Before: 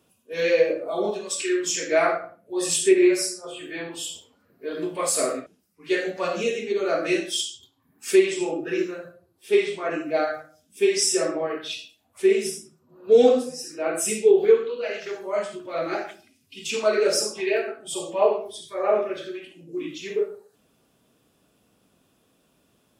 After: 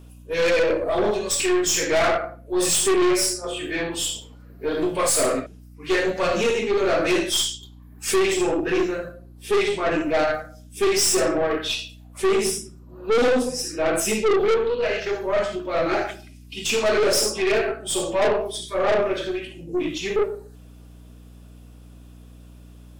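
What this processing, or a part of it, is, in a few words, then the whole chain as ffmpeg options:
valve amplifier with mains hum: -filter_complex "[0:a]asettb=1/sr,asplit=3[a][b][c];[a]atrim=end=14.004[d];[b]atrim=start=14:end=15.96,asetpts=PTS-STARTPTS,afade=t=in:d=0.004:c=qsin,afade=t=out:st=1.956:d=0.004:c=qsin,equalizer=f=8.9k:t=o:w=0.54:g=-11.5[e];[c]atrim=start=15.956[f];[d][e]acrossfade=d=0.004:c1=hsin:c2=qsin[g];[g][f]acrossfade=d=0.004:c1=qsin:c2=hsin,aeval=exprs='(tanh(17.8*val(0)+0.3)-tanh(0.3))/17.8':c=same,aeval=exprs='val(0)+0.00251*(sin(2*PI*60*n/s)+sin(2*PI*2*60*n/s)/2+sin(2*PI*3*60*n/s)/3+sin(2*PI*4*60*n/s)/4+sin(2*PI*5*60*n/s)/5)':c=same,volume=8.5dB"

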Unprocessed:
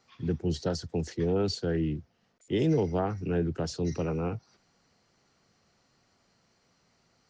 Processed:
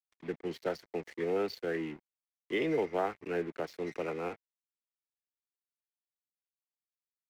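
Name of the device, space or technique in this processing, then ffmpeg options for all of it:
pocket radio on a weak battery: -af "highpass=380,lowpass=3.1k,aeval=exprs='sgn(val(0))*max(abs(val(0))-0.00316,0)':c=same,equalizer=f=2.1k:t=o:w=0.49:g=10"

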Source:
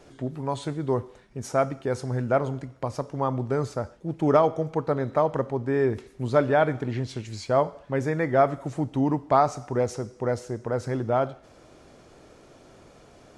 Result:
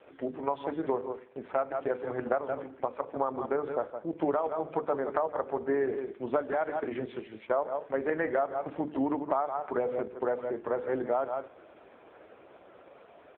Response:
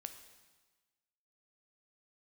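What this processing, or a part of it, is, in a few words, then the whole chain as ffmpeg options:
voicemail: -af "highpass=150,bandreject=f=50:t=h:w=6,bandreject=f=100:t=h:w=6,bandreject=f=150:t=h:w=6,bandreject=f=200:t=h:w=6,bandreject=f=250:t=h:w=6,bandreject=f=300:t=h:w=6,bandreject=f=350:t=h:w=6,bandreject=f=400:t=h:w=6,bandreject=f=450:t=h:w=6,bandreject=f=500:t=h:w=6,adynamicequalizer=threshold=0.00112:dfrequency=9500:dqfactor=2.6:tfrequency=9500:tqfactor=2.6:attack=5:release=100:ratio=0.375:range=2:mode=cutabove:tftype=bell,highpass=350,lowpass=2.7k,aecho=1:1:163:0.282,acompressor=threshold=-28dB:ratio=10,volume=4dB" -ar 8000 -c:a libopencore_amrnb -b:a 4750

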